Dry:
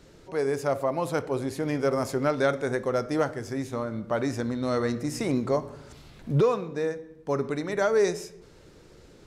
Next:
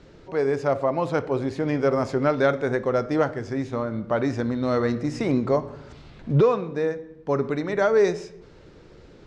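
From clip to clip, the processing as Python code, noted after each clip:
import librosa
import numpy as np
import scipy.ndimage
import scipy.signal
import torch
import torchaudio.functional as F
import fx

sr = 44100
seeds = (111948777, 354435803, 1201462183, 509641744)

y = fx.air_absorb(x, sr, metres=130.0)
y = y * 10.0 ** (4.0 / 20.0)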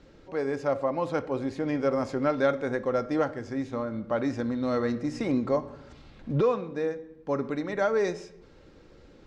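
y = x + 0.31 * np.pad(x, (int(3.7 * sr / 1000.0), 0))[:len(x)]
y = y * 10.0 ** (-5.0 / 20.0)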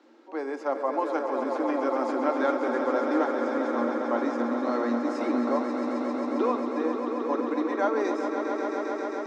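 y = scipy.signal.sosfilt(scipy.signal.cheby1(6, 9, 230.0, 'highpass', fs=sr, output='sos'), x)
y = fx.echo_swell(y, sr, ms=134, loudest=5, wet_db=-8.5)
y = y * 10.0 ** (4.5 / 20.0)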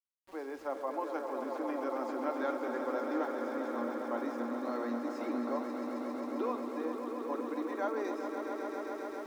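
y = np.where(np.abs(x) >= 10.0 ** (-44.5 / 20.0), x, 0.0)
y = y * 10.0 ** (-9.0 / 20.0)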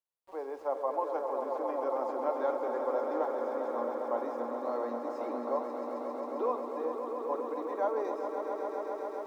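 y = fx.band_shelf(x, sr, hz=680.0, db=11.0, octaves=1.7)
y = y * 10.0 ** (-6.0 / 20.0)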